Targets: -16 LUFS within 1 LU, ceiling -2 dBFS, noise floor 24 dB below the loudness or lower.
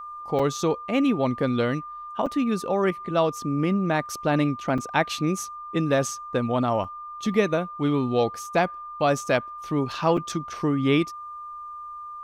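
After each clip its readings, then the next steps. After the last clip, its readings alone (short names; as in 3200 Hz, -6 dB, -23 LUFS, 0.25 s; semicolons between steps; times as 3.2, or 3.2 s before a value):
dropouts 5; longest dropout 4.9 ms; steady tone 1200 Hz; tone level -35 dBFS; loudness -25.0 LUFS; peak -7.5 dBFS; loudness target -16.0 LUFS
-> interpolate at 0.39/2.26/4.78/6.84/10.17, 4.9 ms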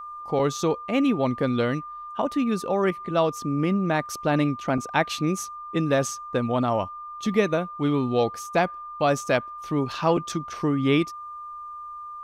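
dropouts 0; steady tone 1200 Hz; tone level -35 dBFS
-> notch 1200 Hz, Q 30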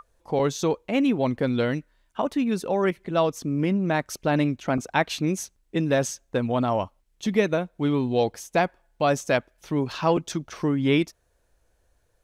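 steady tone none; loudness -25.5 LUFS; peak -8.0 dBFS; loudness target -16.0 LUFS
-> gain +9.5 dB; limiter -2 dBFS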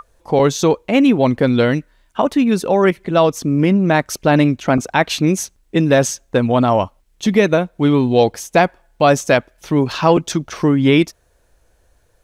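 loudness -16.0 LUFS; peak -2.0 dBFS; noise floor -58 dBFS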